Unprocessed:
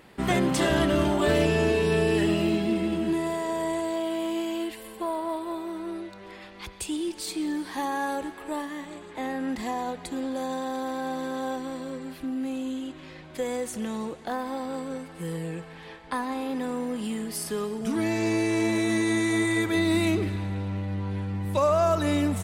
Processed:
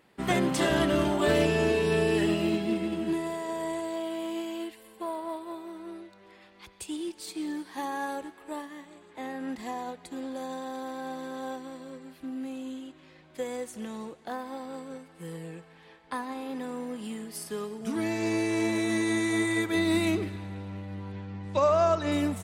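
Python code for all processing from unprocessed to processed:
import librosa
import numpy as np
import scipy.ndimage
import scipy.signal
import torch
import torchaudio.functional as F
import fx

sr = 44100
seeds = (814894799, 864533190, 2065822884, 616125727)

y = fx.chain(x, sr, fx.lowpass(hz=6800.0, slope=24),
    fx.hum_notches(base_hz=60, count=6), at=(21.12, 22.12))
y = fx.low_shelf(y, sr, hz=64.0, db=-10.5)
y = fx.upward_expand(y, sr, threshold_db=-40.0, expansion=1.5)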